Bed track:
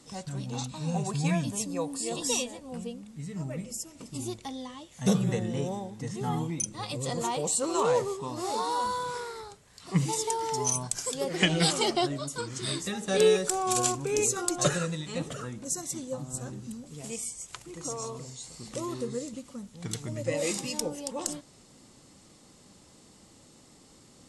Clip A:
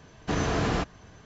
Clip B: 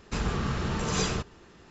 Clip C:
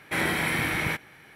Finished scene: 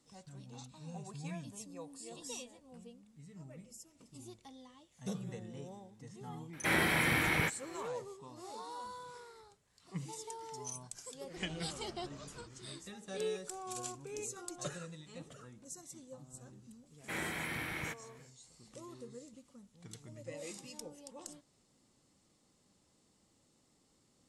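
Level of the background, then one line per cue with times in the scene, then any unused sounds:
bed track -16 dB
6.53 add C -4 dB
11.25 add B -14.5 dB + compressor, threshold -37 dBFS
16.97 add C -13 dB, fades 0.10 s
not used: A

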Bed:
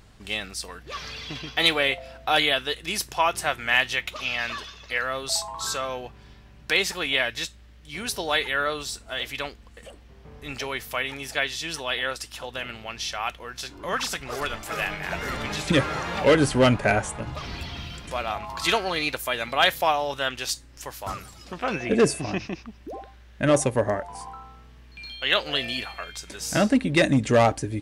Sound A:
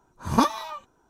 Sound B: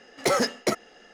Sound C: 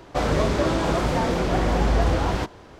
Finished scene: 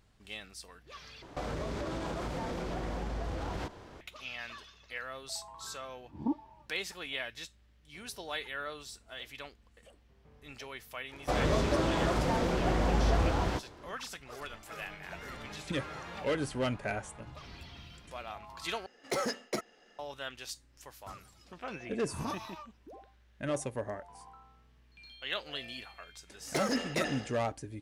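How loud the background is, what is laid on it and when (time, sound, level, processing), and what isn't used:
bed -14 dB
1.22 replace with C -5 dB + compressor, threshold -28 dBFS
5.88 add A -4.5 dB + vocal tract filter u
11.13 add C -7 dB
18.86 replace with B -10 dB
21.87 add A -11.5 dB + limiter -15.5 dBFS
26.29 add B -10.5 dB + sustainer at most 64 dB/s

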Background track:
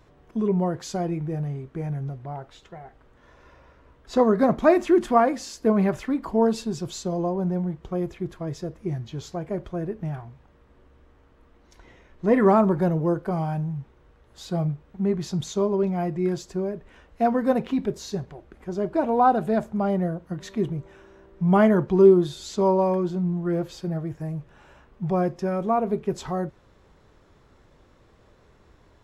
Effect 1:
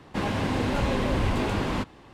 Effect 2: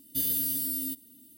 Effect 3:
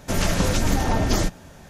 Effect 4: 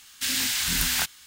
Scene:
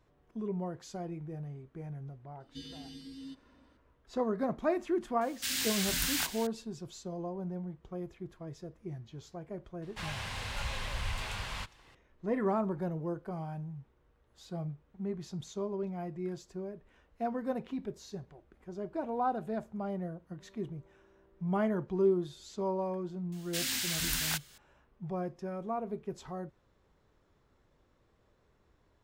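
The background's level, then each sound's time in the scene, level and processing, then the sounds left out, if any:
background track -13 dB
2.4 add 2 -5.5 dB + LPF 4700 Hz 24 dB/oct
5.21 add 4 -7.5 dB + echo 0.609 s -11.5 dB
9.82 add 1 -1.5 dB + passive tone stack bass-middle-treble 10-0-10
23.32 add 4 -8 dB
not used: 3

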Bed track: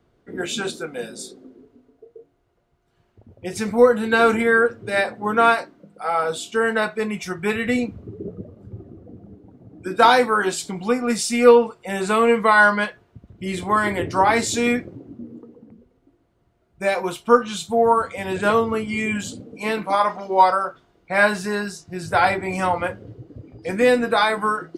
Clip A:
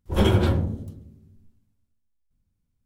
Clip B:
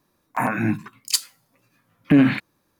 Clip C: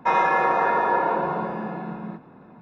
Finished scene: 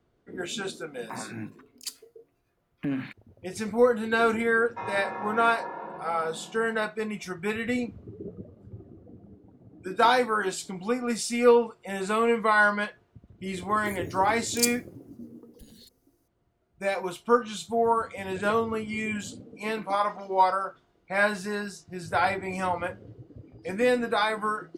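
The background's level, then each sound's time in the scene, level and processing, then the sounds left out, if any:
bed track -7 dB
0.73 add B -15.5 dB
4.71 add C -15.5 dB
13.49 add B -2 dB + inverse Chebyshev band-stop 120–2600 Hz
not used: A

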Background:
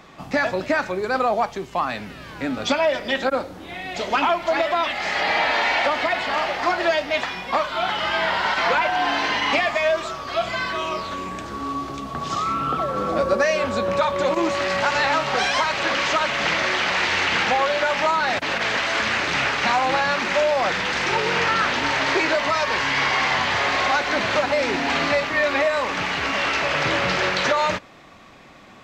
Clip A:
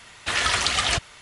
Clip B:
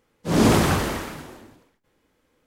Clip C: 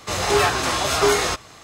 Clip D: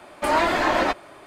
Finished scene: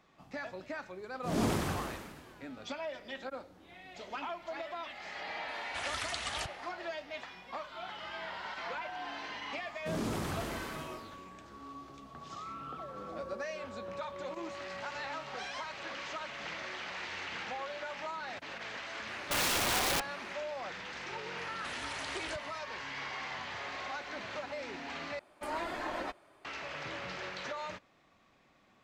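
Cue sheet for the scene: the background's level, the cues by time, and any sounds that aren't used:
background -20 dB
0.98 add B -14 dB
5.48 add A -16 dB + vibrato 2.4 Hz 72 cents
9.61 add B -5.5 dB + compressor 2.5:1, threshold -33 dBFS
19.08 add D -7.5 dB + wrapped overs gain 18.5 dB
21.38 add A -13.5 dB + compressor 3:1, threshold -29 dBFS
25.19 replace with D -17 dB
not used: C

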